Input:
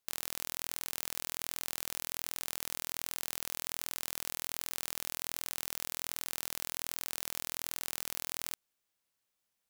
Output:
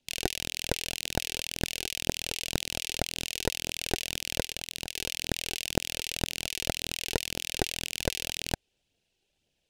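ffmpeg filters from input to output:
-filter_complex "[0:a]asettb=1/sr,asplit=3[a][b][c];[a]atrim=end=2.084[d];[b]atrim=start=2.08:end=3.57,asetpts=PTS-STARTPTS,afade=t=in:d=0.004:c=qsin,afade=t=out:st=1.486:d=0.004:c=qsin,highpass=f=480:p=1[e];[c]atrim=start=3.566[f];[d][e]acrossfade=d=0.004:c1=hsin:c2=qsin[g];[g][f]acrossfade=d=0.004:c1=qsin:c2=hsin,asettb=1/sr,asplit=3[h][i][j];[h]atrim=end=4.424[k];[i]atrim=start=4.42:end=4.97,asetpts=PTS-STARTPTS,afade=t=in:d=0.004:c=qsin,afade=t=out:st=0.546:d=0.004:c=qsin,aeval=exprs='val(0)*sin(2*PI*880*n/s)':c=same[l];[j]atrim=start=4.966[m];[k][l]acrossfade=d=0.004:c1=hsin:c2=qsin[n];[n][m]acrossfade=d=0.004:c1=qsin:c2=hsin,highshelf=f=2k:t=q:w=3:g=11,asplit=2[o][p];[p]acrusher=samples=38:mix=1:aa=0.000001,volume=-7.5dB[q];[o][q]amix=inputs=2:normalize=0,adynamicsmooth=sensitivity=2:basefreq=7.4k,flanger=delay=0:depth=2.7:regen=42:speed=1.9:shape=triangular"

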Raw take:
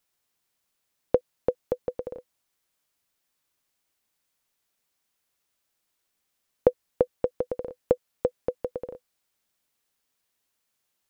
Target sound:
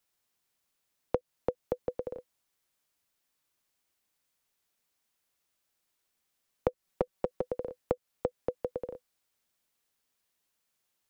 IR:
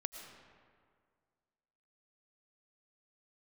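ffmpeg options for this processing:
-filter_complex "[0:a]acrossover=split=200[a][b];[b]acompressor=threshold=-25dB:ratio=4[c];[a][c]amix=inputs=2:normalize=0,asettb=1/sr,asplit=3[d][e][f];[d]atrim=end=6.684[g];[e]atrim=start=6.68:end=7.5,asetpts=PTS-STARTPTS,afade=t=in:d=0.004:c=qsin,afade=t=out:st=0.816:d=0.004:c=qsin,aecho=1:1:5.3:0.58,atrim=end_sample=36162[h];[f]atrim=start=7.496[i];[g][h]acrossfade=d=0.004:c1=hsin:c2=qsin[j];[j][i]acrossfade=d=0.004:c1=qsin:c2=hsin,volume=-2dB"

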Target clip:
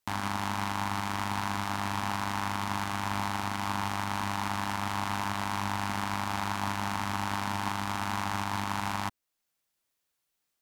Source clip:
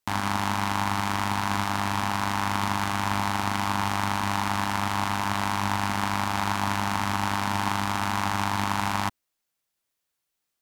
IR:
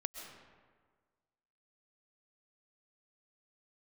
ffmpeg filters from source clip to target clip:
-af "alimiter=limit=-15dB:level=0:latency=1:release=430"

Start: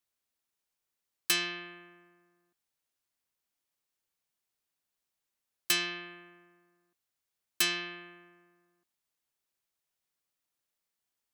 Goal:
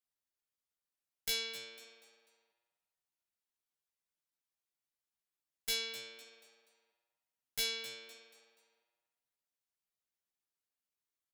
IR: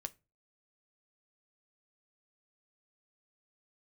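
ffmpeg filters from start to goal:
-filter_complex "[0:a]aeval=exprs='clip(val(0),-1,0.075)':c=same,asplit=5[a][b][c][d][e];[b]adelay=245,afreqshift=97,volume=-13.5dB[f];[c]adelay=490,afreqshift=194,volume=-21.7dB[g];[d]adelay=735,afreqshift=291,volume=-29.9dB[h];[e]adelay=980,afreqshift=388,volume=-38dB[i];[a][f][g][h][i]amix=inputs=5:normalize=0,asetrate=57191,aresample=44100,atempo=0.771105,asplit=2[j][k];[k]adelay=15,volume=-5dB[l];[j][l]amix=inputs=2:normalize=0,volume=-8.5dB"

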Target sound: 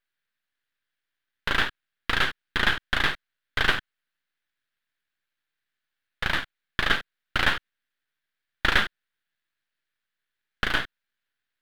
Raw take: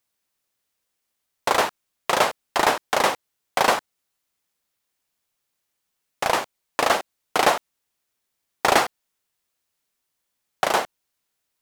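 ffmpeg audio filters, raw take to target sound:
-af "highpass=f=1.6k:t=q:w=4.6,aeval=exprs='max(val(0),0)':c=same,highshelf=f=4.9k:t=q:w=1.5:g=-8,volume=-3.5dB"

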